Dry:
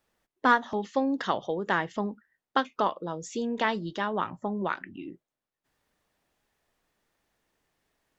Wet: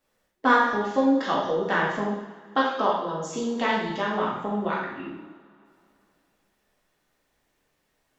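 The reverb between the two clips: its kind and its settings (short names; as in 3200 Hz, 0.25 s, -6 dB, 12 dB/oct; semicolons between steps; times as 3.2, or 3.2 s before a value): two-slope reverb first 0.87 s, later 2.8 s, from -19 dB, DRR -5.5 dB; gain -2.5 dB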